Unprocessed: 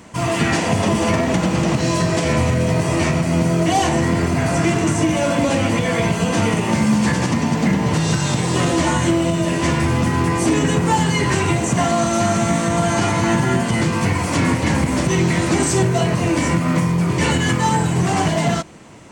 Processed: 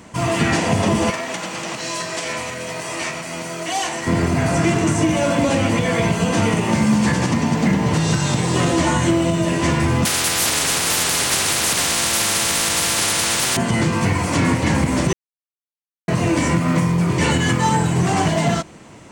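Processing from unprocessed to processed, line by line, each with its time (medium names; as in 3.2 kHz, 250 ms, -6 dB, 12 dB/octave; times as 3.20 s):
1.10–4.07 s: high-pass 1.3 kHz 6 dB/octave
10.05–13.57 s: spectrum-flattening compressor 10:1
15.13–16.08 s: mute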